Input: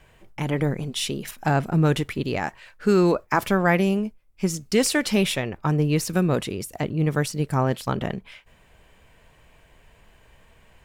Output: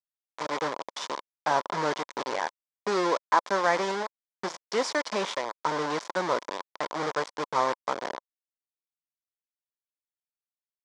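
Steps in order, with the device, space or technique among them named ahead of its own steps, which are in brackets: hand-held game console (bit-crush 4-bit; speaker cabinet 430–5900 Hz, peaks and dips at 560 Hz +4 dB, 1000 Hz +10 dB, 2700 Hz -9 dB, 4100 Hz -3 dB); gain -5 dB

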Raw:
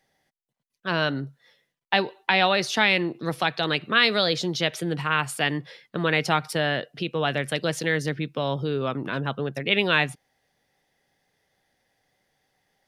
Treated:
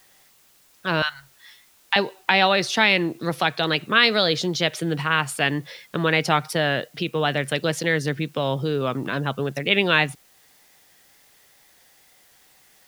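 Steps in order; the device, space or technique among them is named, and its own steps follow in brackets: 1.02–1.96 inverse Chebyshev band-stop 170–480 Hz, stop band 50 dB; noise-reduction cassette on a plain deck (mismatched tape noise reduction encoder only; wow and flutter; white noise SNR 33 dB); gain +2.5 dB

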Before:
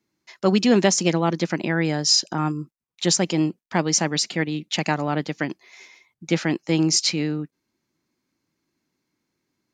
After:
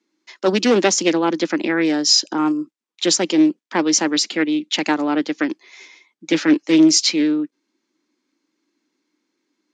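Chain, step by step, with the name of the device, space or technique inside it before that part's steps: 6.3–7.02 comb 6.9 ms, depth 50%; HPF 210 Hz 24 dB/oct; full-range speaker at full volume (Doppler distortion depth 0.29 ms; speaker cabinet 210–8000 Hz, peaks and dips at 300 Hz +7 dB, 680 Hz -5 dB, 3400 Hz +3 dB); gain +3.5 dB

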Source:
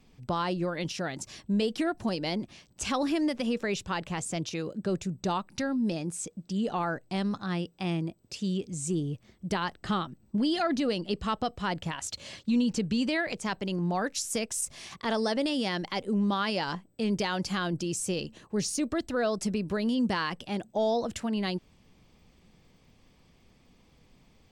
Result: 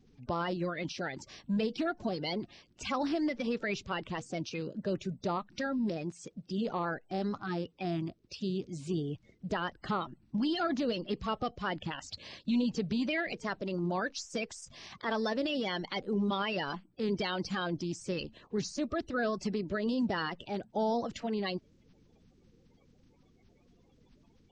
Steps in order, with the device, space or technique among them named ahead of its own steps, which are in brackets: clip after many re-uploads (LPF 5600 Hz 24 dB/oct; bin magnitudes rounded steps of 30 dB); gain -3 dB

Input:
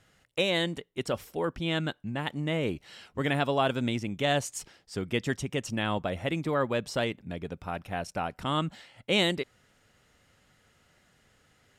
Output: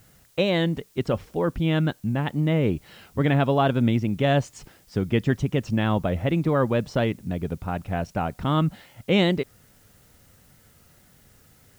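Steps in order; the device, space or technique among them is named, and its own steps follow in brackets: cassette deck with a dirty head (tape spacing loss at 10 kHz 28 dB; wow and flutter; white noise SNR 38 dB); tone controls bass +5 dB, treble +6 dB; gain +6.5 dB

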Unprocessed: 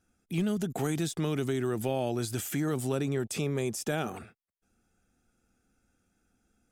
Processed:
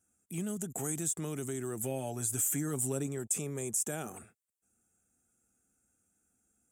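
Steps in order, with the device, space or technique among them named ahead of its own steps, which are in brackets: 1.82–3.07 comb 7.1 ms, depth 55%; budget condenser microphone (HPF 61 Hz; resonant high shelf 5900 Hz +10 dB, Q 3); gain -7.5 dB

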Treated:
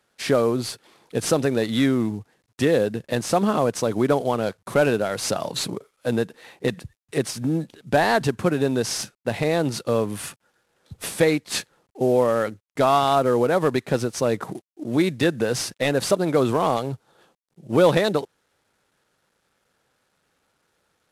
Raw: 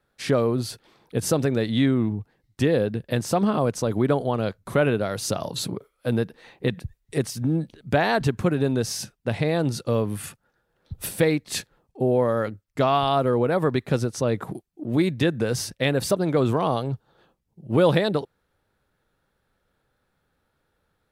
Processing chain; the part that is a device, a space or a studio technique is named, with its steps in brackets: early wireless headset (HPF 240 Hz 6 dB/oct; CVSD 64 kbps); gain +3.5 dB

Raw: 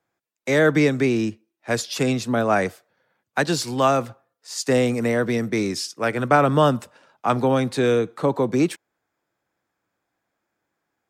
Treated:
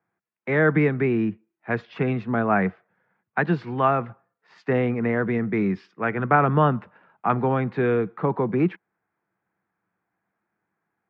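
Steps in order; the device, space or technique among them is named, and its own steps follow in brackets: bass cabinet (speaker cabinet 80–2200 Hz, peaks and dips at 190 Hz +8 dB, 270 Hz -6 dB, 560 Hz -8 dB)

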